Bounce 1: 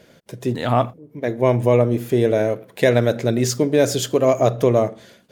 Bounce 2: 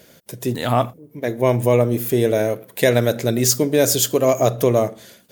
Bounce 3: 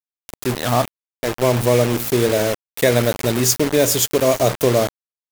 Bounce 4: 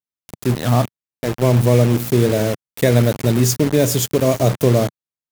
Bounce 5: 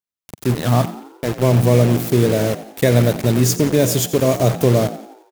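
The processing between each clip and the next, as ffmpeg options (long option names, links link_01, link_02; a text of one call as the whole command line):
ffmpeg -i in.wav -af "aemphasis=mode=production:type=50fm" out.wav
ffmpeg -i in.wav -af "acrusher=bits=3:mix=0:aa=0.000001" out.wav
ffmpeg -i in.wav -af "equalizer=frequency=140:width_type=o:width=2.3:gain=11,volume=-3.5dB" out.wav
ffmpeg -i in.wav -filter_complex "[0:a]asplit=6[link_01][link_02][link_03][link_04][link_05][link_06];[link_02]adelay=88,afreqshift=52,volume=-15dB[link_07];[link_03]adelay=176,afreqshift=104,volume=-20.7dB[link_08];[link_04]adelay=264,afreqshift=156,volume=-26.4dB[link_09];[link_05]adelay=352,afreqshift=208,volume=-32dB[link_10];[link_06]adelay=440,afreqshift=260,volume=-37.7dB[link_11];[link_01][link_07][link_08][link_09][link_10][link_11]amix=inputs=6:normalize=0" out.wav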